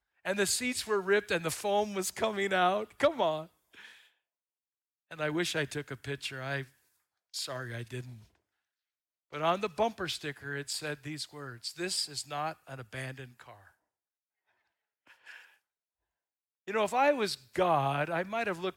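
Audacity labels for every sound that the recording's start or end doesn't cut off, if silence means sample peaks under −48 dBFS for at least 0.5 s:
5.110000	6.650000	sound
7.340000	8.220000	sound
9.330000	13.670000	sound
15.100000	15.450000	sound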